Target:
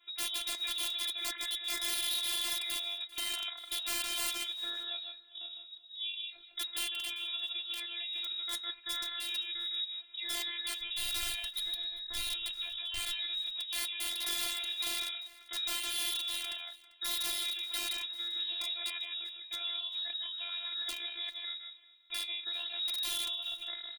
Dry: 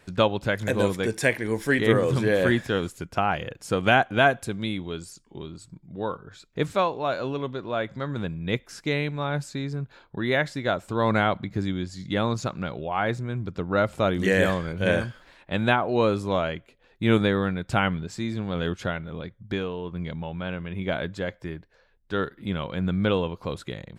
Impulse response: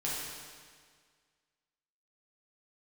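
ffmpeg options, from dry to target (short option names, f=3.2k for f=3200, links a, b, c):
-filter_complex "[0:a]lowpass=f=3.3k:t=q:w=0.5098,lowpass=f=3.3k:t=q:w=0.6013,lowpass=f=3.3k:t=q:w=0.9,lowpass=f=3.3k:t=q:w=2.563,afreqshift=-3900,adynamicequalizer=threshold=0.00891:dfrequency=1900:dqfactor=4.2:tfrequency=1900:tqfactor=4.2:attack=5:release=100:ratio=0.375:range=2:mode=cutabove:tftype=bell,aecho=1:1:156:0.473,aeval=exprs='(mod(6.31*val(0)+1,2)-1)/6.31':c=same,alimiter=limit=-21dB:level=0:latency=1:release=67,asplit=3[a][b][c];[a]afade=t=out:st=10.79:d=0.02[d];[b]asubboost=boost=9:cutoff=110,afade=t=in:st=10.79:d=0.02,afade=t=out:st=13.25:d=0.02[e];[c]afade=t=in:st=13.25:d=0.02[f];[d][e][f]amix=inputs=3:normalize=0,aecho=1:1:394:0.0794,flanger=delay=3.6:depth=6.5:regen=-64:speed=0.74:shape=sinusoidal,afftfilt=real='hypot(re,im)*cos(PI*b)':imag='0':win_size=512:overlap=0.75"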